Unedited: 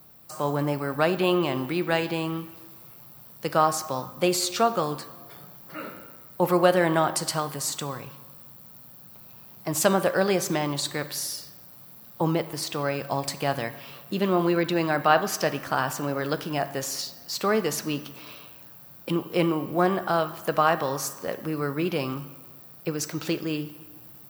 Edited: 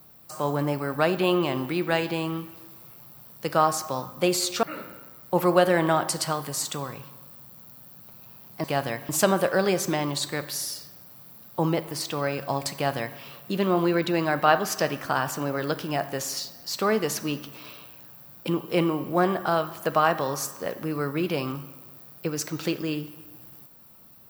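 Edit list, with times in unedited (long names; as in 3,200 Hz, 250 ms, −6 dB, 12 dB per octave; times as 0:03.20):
0:04.63–0:05.70: remove
0:13.36–0:13.81: duplicate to 0:09.71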